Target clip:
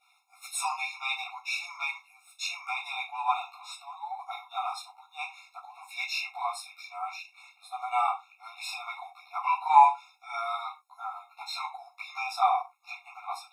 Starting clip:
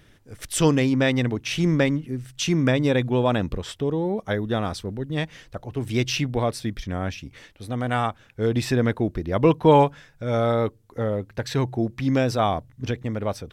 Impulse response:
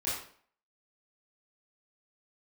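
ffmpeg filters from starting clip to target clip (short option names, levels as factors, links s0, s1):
-filter_complex "[0:a]asettb=1/sr,asplit=3[s0][s1][s2];[s0]atrim=end=9.504[s3];[s1]atrim=start=9.5:end=11.68,asetpts=PTS-STARTPTS,afade=t=in:d=0.004:c=qsin,afade=t=out:st=2.176:d=0.004:c=qsin,asplit=2[s4][s5];[s5]adelay=13,volume=0.562[s6];[s4][s6]amix=inputs=2:normalize=0,atrim=end_sample=96138[s7];[s2]atrim=start=11.676[s8];[s3][s7]acrossfade=d=0.004:c1=hsin:c2=qsin[s9];[s9][s8]acrossfade=d=0.004:c1=qsin:c2=hsin[s10];[1:a]atrim=start_sample=2205,afade=t=out:st=0.35:d=0.01,atrim=end_sample=15876,asetrate=88200,aresample=44100[s11];[s10][s11]afir=irnorm=-1:irlink=0,afftfilt=real='re*eq(mod(floor(b*sr/1024/710),2),1)':imag='im*eq(mod(floor(b*sr/1024/710),2),1)':win_size=1024:overlap=0.75"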